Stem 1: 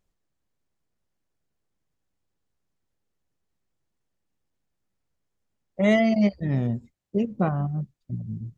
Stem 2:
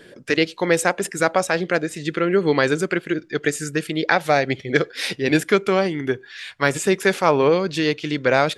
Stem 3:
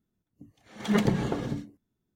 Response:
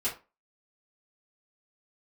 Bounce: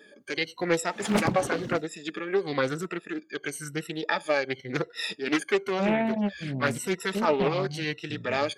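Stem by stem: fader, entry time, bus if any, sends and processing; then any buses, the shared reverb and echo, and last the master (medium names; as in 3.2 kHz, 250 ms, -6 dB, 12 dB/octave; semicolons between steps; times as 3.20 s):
-4.5 dB, 0.00 s, no send, loudest bins only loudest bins 16
-13.5 dB, 0.00 s, no send, drifting ripple filter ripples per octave 2, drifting -0.96 Hz, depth 24 dB
+2.0 dB, 0.20 s, no send, reverb removal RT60 0.85 s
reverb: none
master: high-pass 180 Hz 6 dB/octave; loudspeaker Doppler distortion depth 0.55 ms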